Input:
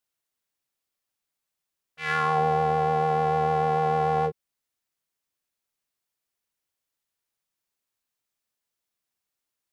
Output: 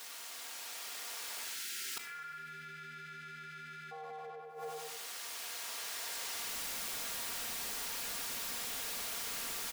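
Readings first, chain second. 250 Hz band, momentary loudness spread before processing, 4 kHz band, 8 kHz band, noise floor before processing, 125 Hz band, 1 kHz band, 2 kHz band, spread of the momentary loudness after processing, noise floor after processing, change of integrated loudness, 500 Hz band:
−19.5 dB, 5 LU, +6.5 dB, can't be measured, −85 dBFS, −26.0 dB, −21.0 dB, −7.0 dB, 10 LU, −49 dBFS, −15.0 dB, −20.5 dB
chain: mu-law and A-law mismatch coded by mu
camcorder AGC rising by 13 dB per second
bass and treble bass −11 dB, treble +5 dB
time-frequency box erased 0:01.44–0:03.92, 430–1,300 Hz
feedback echo with a low-pass in the loop 96 ms, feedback 44%, low-pass 4,500 Hz, level −3.5 dB
mid-hump overdrive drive 15 dB, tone 3,300 Hz, clips at −9 dBFS
gate with flip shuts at −24 dBFS, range −41 dB
wrap-around overflow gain 29.5 dB
comb filter 4.3 ms, depth 40%
coupled-rooms reverb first 0.45 s, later 2 s, from −17 dB, DRR 18.5 dB
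soft clipping −35 dBFS, distortion −12 dB
envelope flattener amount 70%

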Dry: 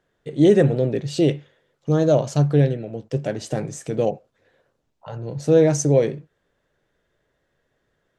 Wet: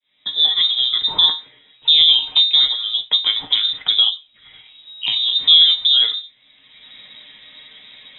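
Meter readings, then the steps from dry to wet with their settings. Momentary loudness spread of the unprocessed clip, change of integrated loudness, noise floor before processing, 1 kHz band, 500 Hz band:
17 LU, +6.5 dB, −72 dBFS, −3.0 dB, below −25 dB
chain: fade in at the beginning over 1.47 s
in parallel at −3 dB: downward compressor, threshold −26 dBFS, peak gain reduction 14.5 dB
on the sum: tuned comb filter 160 Hz, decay 0.18 s, harmonics all, mix 80%
voice inversion scrambler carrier 3,800 Hz
dynamic equaliser 950 Hz, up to +6 dB, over −47 dBFS, Q 1.7
multiband upward and downward compressor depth 70%
level +9 dB

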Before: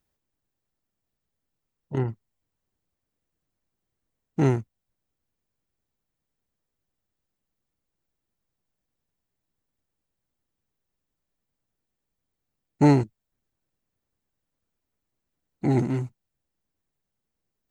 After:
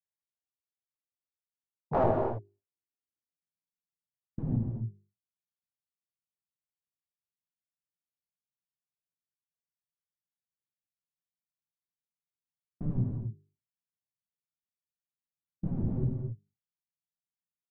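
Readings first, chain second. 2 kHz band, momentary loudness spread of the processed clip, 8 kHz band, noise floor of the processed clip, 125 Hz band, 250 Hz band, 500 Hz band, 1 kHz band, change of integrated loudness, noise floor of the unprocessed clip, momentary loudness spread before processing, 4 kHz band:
below −10 dB, 13 LU, below −25 dB, below −85 dBFS, −6.0 dB, −10.0 dB, −4.0 dB, −2.5 dB, −8.5 dB, −83 dBFS, 15 LU, below −15 dB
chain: mains-hum notches 50/100/150/200/250/300/350/400 Hz
downward expander −53 dBFS
high-pass filter 99 Hz 12 dB per octave
treble cut that deepens with the level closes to 450 Hz, closed at −26 dBFS
low-shelf EQ 170 Hz +7 dB
downward compressor 8 to 1, threshold −23 dBFS, peak gain reduction 11.5 dB
wrap-around overflow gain 26 dB
low-pass filter sweep 2,000 Hz → 180 Hz, 0:00.81–0:03.87
reverb whose tail is shaped and stops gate 290 ms flat, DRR 2.5 dB
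level +2.5 dB

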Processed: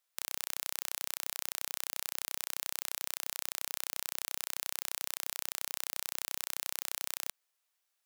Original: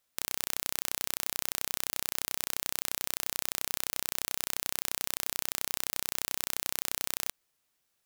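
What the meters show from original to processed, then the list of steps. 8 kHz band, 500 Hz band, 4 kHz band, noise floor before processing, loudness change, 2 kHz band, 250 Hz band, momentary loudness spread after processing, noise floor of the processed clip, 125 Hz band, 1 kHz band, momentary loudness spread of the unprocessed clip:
−4.0 dB, −8.0 dB, −4.0 dB, −78 dBFS, −4.0 dB, −4.0 dB, below −15 dB, 0 LU, −82 dBFS, below −25 dB, −4.5 dB, 0 LU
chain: high-pass filter 590 Hz 12 dB per octave
level −4 dB

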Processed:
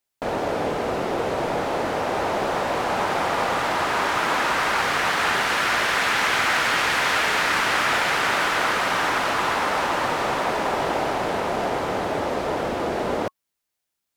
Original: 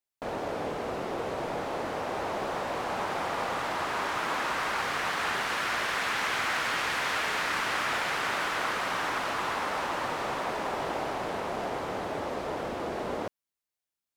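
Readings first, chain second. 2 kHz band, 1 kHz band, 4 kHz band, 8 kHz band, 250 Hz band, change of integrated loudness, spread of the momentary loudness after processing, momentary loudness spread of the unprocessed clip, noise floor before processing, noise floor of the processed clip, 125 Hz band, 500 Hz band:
+8.5 dB, +8.0 dB, +8.5 dB, +8.5 dB, +8.5 dB, +8.5 dB, 6 LU, 6 LU, below −85 dBFS, −81 dBFS, +8.5 dB, +8.5 dB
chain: notch filter 1,100 Hz, Q 29
level +8.5 dB

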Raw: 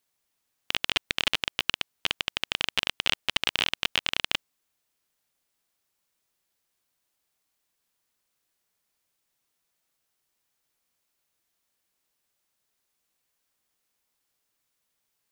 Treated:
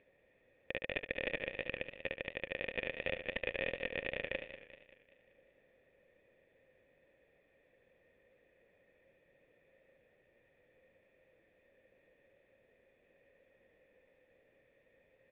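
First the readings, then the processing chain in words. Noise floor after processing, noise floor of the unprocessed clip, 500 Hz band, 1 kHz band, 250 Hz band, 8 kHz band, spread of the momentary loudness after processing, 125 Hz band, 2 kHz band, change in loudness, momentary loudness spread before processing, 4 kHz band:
−72 dBFS, −79 dBFS, +3.0 dB, −15.5 dB, −4.5 dB, below −35 dB, 5 LU, −5.5 dB, −9.0 dB, −12.5 dB, 5 LU, −22.5 dB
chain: upward compression, threshold −38 dBFS
formant resonators in series e
parametric band 1,400 Hz −12 dB 2.7 octaves
on a send: repeating echo 72 ms, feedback 30%, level −9 dB
on the sum: feedback echo with a swinging delay time 193 ms, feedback 51%, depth 96 cents, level −12.5 dB
level +14 dB

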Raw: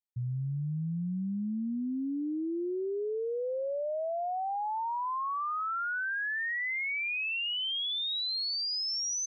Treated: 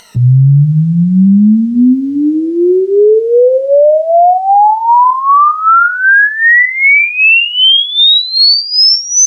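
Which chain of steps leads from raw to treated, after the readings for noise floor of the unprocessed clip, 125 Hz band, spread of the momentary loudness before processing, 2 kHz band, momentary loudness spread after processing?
−33 dBFS, +26.5 dB, 4 LU, +25.0 dB, 5 LU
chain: rippled gain that drifts along the octave scale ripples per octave 1.9, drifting −1.4 Hz, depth 22 dB
parametric band 300 Hz −13.5 dB 0.43 octaves
in parallel at 0 dB: upward compression, threshold −27 dBFS
on the sum: bit reduction 11 bits
high-frequency loss of the air 70 metres
rectangular room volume 240 cubic metres, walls furnished, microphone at 0.42 metres
boost into a limiter +19.5 dB
level −1 dB

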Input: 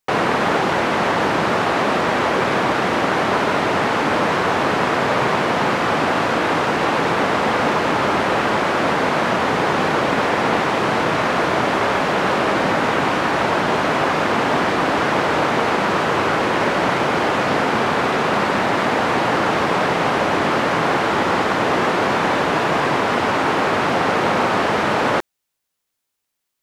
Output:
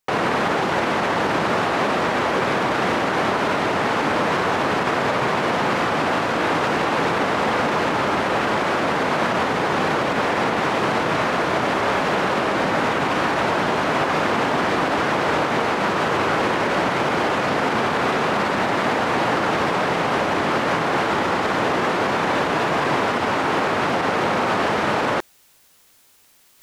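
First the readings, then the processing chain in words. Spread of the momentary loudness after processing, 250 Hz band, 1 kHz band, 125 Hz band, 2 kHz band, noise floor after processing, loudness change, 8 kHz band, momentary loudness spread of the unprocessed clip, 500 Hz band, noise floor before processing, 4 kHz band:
1 LU, −2.5 dB, −2.5 dB, −2.5 dB, −2.0 dB, −55 dBFS, −2.5 dB, −2.0 dB, 0 LU, −2.5 dB, −78 dBFS, −2.0 dB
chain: brickwall limiter −11.5 dBFS, peak gain reduction 7 dB
reversed playback
upward compression, threshold −36 dBFS
reversed playback

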